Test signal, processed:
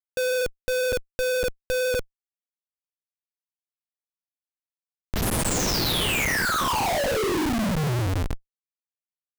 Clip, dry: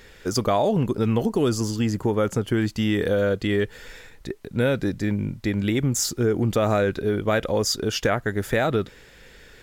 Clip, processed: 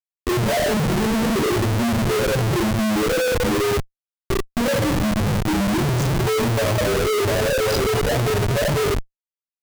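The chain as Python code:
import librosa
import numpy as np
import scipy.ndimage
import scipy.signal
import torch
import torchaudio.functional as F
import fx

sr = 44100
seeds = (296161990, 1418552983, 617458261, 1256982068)

y = fx.spec_topn(x, sr, count=1)
y = fx.rev_double_slope(y, sr, seeds[0], early_s=0.58, late_s=1.7, knee_db=-17, drr_db=-7.0)
y = fx.schmitt(y, sr, flips_db=-31.0)
y = F.gain(torch.from_numpy(y), 4.0).numpy()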